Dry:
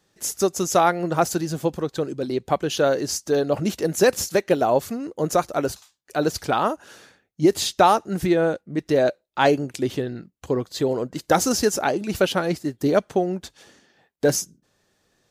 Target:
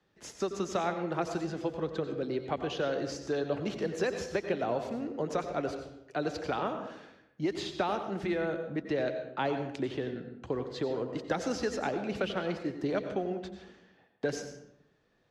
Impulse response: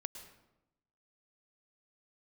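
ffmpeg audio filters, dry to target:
-filter_complex "[0:a]lowpass=3.1k,acrossover=split=83|270|750|1600[a][b][c][d][e];[a]acompressor=threshold=-52dB:ratio=4[f];[b]acompressor=threshold=-37dB:ratio=4[g];[c]acompressor=threshold=-28dB:ratio=4[h];[d]acompressor=threshold=-39dB:ratio=4[i];[e]acompressor=threshold=-34dB:ratio=4[j];[f][g][h][i][j]amix=inputs=5:normalize=0[k];[1:a]atrim=start_sample=2205,asetrate=52920,aresample=44100[l];[k][l]afir=irnorm=-1:irlink=0"

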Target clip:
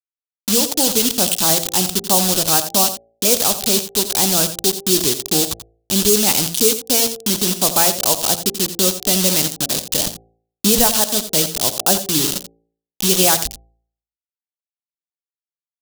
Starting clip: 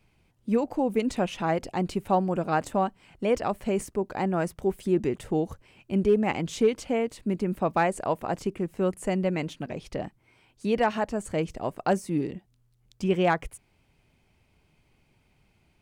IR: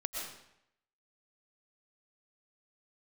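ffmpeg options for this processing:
-filter_complex "[0:a]aresample=8000,aresample=44100,asplit=2[a][b];[b]acompressor=threshold=-35dB:ratio=4,volume=2.5dB[c];[a][c]amix=inputs=2:normalize=0,asettb=1/sr,asplit=3[d][e][f];[d]atrim=end=10.064[g];[e]atrim=start=10.06:end=10.87,asetpts=PTS-STARTPTS,afade=t=in:d=0.004:c=qsin,afade=t=out:st=0.806:d=0.004:c=qsin,aemphasis=mode=reproduction:type=bsi[h];[f]atrim=start=10.866[i];[g][h]acrossfade=d=0.004:c1=hsin:c2=qsin[j];[j][i]acrossfade=d=0.004:c1=qsin:c2=hsin,acrusher=bits=4:mix=0:aa=0.000001,asplit=2[k][l];[l]aecho=0:1:86:0.237[m];[k][m]amix=inputs=2:normalize=0,aexciter=amount=4:drive=9.5:freq=3.1k,bandreject=f=56.56:t=h:w=4,bandreject=f=113.12:t=h:w=4,bandreject=f=169.68:t=h:w=4,bandreject=f=226.24:t=h:w=4,bandreject=f=282.8:t=h:w=4,bandreject=f=339.36:t=h:w=4,bandreject=f=395.92:t=h:w=4,bandreject=f=452.48:t=h:w=4,bandreject=f=509.04:t=h:w=4,bandreject=f=565.6:t=h:w=4,bandreject=f=622.16:t=h:w=4,bandreject=f=678.72:t=h:w=4,bandreject=f=735.28:t=h:w=4,bandreject=f=791.84:t=h:w=4,volume=1.5dB"

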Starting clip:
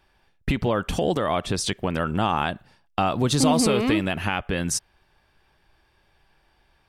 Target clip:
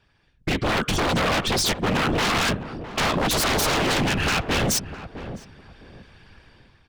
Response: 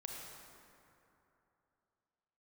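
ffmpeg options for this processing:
-filter_complex "[0:a]lowpass=6.5k,equalizer=f=760:w=1.6:g=-7.5,dynaudnorm=f=160:g=7:m=12.5dB,afftfilt=real='hypot(re,im)*cos(2*PI*random(0))':imag='hypot(re,im)*sin(2*PI*random(1))':win_size=512:overlap=0.75,aeval=exprs='0.0631*(abs(mod(val(0)/0.0631+3,4)-2)-1)':c=same,asplit=2[a][b];[b]adelay=660,lowpass=f=840:p=1,volume=-10dB,asplit=2[c][d];[d]adelay=660,lowpass=f=840:p=1,volume=0.26,asplit=2[e][f];[f]adelay=660,lowpass=f=840:p=1,volume=0.26[g];[a][c][e][g]amix=inputs=4:normalize=0,volume=7dB"

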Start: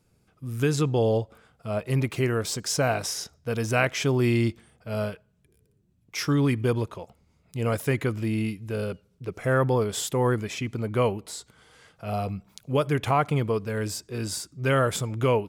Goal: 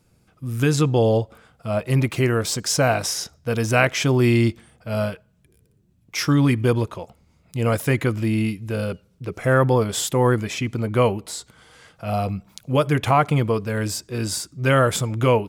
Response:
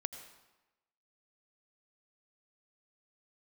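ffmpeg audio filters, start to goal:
-af "bandreject=f=420:w=12,volume=5.5dB"

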